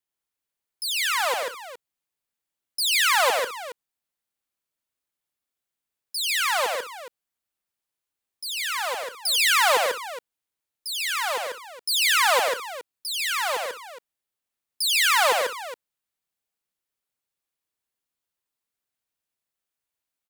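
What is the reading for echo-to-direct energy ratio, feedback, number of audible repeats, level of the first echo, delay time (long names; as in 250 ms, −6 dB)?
−1.5 dB, repeats not evenly spaced, 5, −8.0 dB, 91 ms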